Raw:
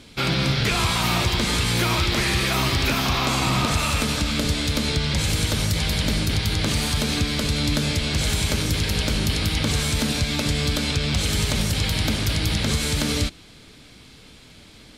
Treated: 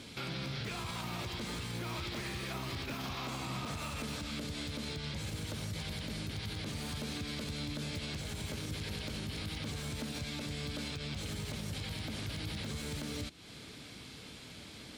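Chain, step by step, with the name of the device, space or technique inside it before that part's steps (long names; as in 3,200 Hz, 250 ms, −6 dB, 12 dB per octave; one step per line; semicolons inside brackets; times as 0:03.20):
podcast mastering chain (high-pass filter 75 Hz 12 dB per octave; de-essing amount 60%; downward compressor 4 to 1, threshold −35 dBFS, peak gain reduction 14 dB; brickwall limiter −28.5 dBFS, peak gain reduction 5.5 dB; level −1.5 dB; MP3 128 kbit/s 48,000 Hz)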